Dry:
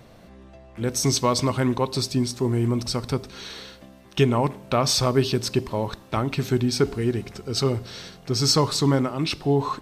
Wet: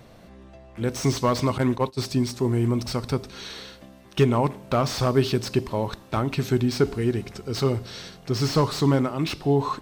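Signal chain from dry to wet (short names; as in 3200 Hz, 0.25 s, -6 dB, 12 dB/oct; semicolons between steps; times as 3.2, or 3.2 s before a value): 1.58–2 gate -24 dBFS, range -19 dB; slew limiter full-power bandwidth 150 Hz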